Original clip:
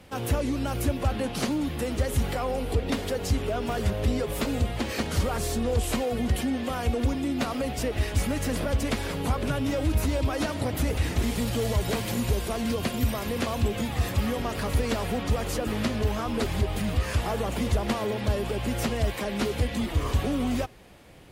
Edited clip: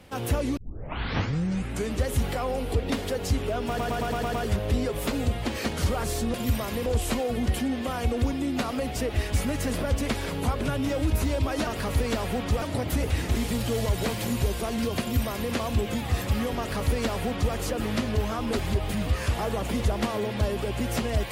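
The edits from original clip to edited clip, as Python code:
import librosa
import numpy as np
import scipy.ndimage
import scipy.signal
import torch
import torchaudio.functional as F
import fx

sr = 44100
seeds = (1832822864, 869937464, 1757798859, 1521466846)

y = fx.edit(x, sr, fx.tape_start(start_s=0.57, length_s=1.48),
    fx.stutter(start_s=3.68, slice_s=0.11, count=7),
    fx.duplicate(start_s=12.88, length_s=0.52, to_s=5.68),
    fx.duplicate(start_s=14.46, length_s=0.95, to_s=10.49), tone=tone)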